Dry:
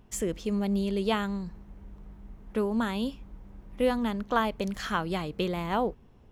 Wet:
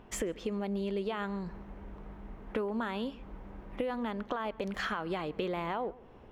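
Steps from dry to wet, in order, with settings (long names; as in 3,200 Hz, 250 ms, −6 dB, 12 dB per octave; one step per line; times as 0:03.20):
bass and treble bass −10 dB, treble −14 dB
brickwall limiter −23 dBFS, peak gain reduction 11 dB
downward compressor 6 to 1, threshold −41 dBFS, peak gain reduction 13.5 dB
on a send: feedback echo with a low-pass in the loop 136 ms, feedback 33%, low-pass 2,400 Hz, level −20.5 dB
on the sum: level +9 dB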